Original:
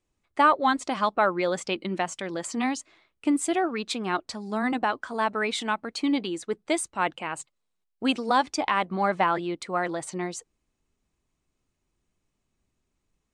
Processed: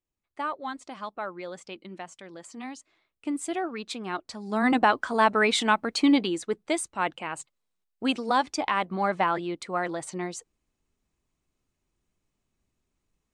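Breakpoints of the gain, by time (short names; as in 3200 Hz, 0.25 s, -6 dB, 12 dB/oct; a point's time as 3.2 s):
2.62 s -12 dB
3.55 s -5 dB
4.28 s -5 dB
4.72 s +5 dB
6.08 s +5 dB
6.73 s -1.5 dB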